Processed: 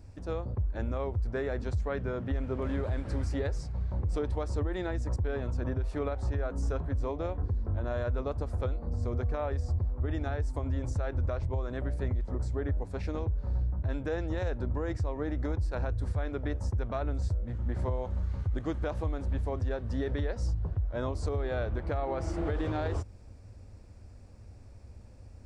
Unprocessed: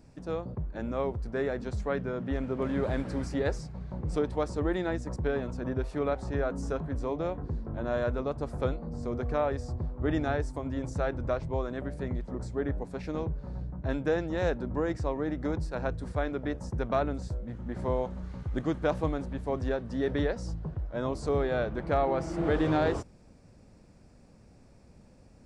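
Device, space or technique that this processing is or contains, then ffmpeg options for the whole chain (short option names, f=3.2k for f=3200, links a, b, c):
car stereo with a boomy subwoofer: -af "lowshelf=f=120:t=q:w=3:g=7,alimiter=limit=-23dB:level=0:latency=1:release=138"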